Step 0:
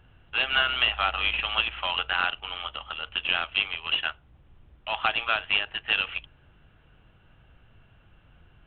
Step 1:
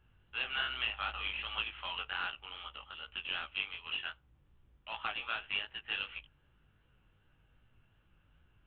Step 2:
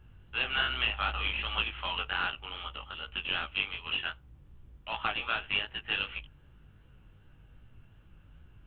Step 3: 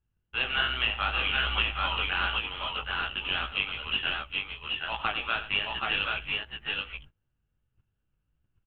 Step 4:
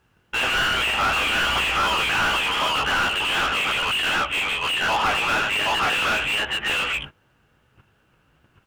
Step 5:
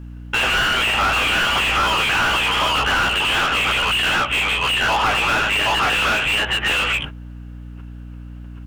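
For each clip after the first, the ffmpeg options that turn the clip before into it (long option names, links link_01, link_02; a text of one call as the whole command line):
ffmpeg -i in.wav -af "equalizer=frequency=680:width_type=o:width=0.31:gain=-6.5,flanger=delay=15.5:depth=6.1:speed=2.6,volume=-8.5dB" out.wav
ffmpeg -i in.wav -af "lowshelf=frequency=440:gain=8,volume=5dB" out.wav
ffmpeg -i in.wav -filter_complex "[0:a]agate=range=-26dB:threshold=-48dB:ratio=16:detection=peak,asplit=2[link_01][link_02];[link_02]aecho=0:1:92|767|781:0.211|0.376|0.668[link_03];[link_01][link_03]amix=inputs=2:normalize=0,volume=2dB" out.wav
ffmpeg -i in.wav -filter_complex "[0:a]asplit=2[link_01][link_02];[link_02]highpass=frequency=720:poles=1,volume=37dB,asoftclip=type=tanh:threshold=-11.5dB[link_03];[link_01][link_03]amix=inputs=2:normalize=0,lowpass=frequency=1700:poles=1,volume=-6dB" out.wav
ffmpeg -i in.wav -af "acompressor=threshold=-28dB:ratio=2,aeval=exprs='val(0)+0.00891*(sin(2*PI*60*n/s)+sin(2*PI*2*60*n/s)/2+sin(2*PI*3*60*n/s)/3+sin(2*PI*4*60*n/s)/4+sin(2*PI*5*60*n/s)/5)':channel_layout=same,volume=8dB" out.wav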